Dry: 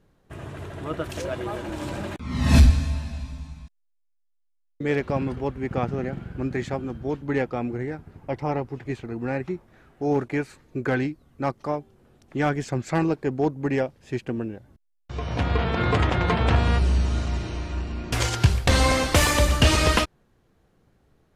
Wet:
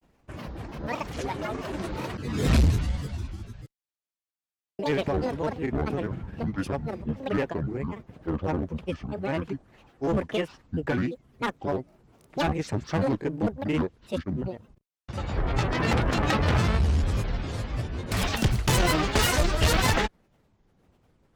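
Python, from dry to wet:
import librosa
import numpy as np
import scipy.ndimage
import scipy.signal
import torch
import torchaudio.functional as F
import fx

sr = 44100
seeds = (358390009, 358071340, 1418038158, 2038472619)

y = fx.granulator(x, sr, seeds[0], grain_ms=100.0, per_s=20.0, spray_ms=24.0, spread_st=12)
y = fx.clip_asym(y, sr, top_db=-21.0, bottom_db=-13.0)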